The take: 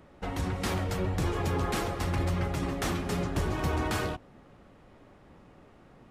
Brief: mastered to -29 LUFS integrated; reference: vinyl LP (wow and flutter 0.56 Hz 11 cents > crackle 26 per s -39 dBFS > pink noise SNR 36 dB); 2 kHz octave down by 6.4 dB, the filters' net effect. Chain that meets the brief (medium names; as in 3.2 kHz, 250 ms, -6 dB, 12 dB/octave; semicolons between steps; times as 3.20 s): peaking EQ 2 kHz -8.5 dB; wow and flutter 0.56 Hz 11 cents; crackle 26 per s -39 dBFS; pink noise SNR 36 dB; trim +2.5 dB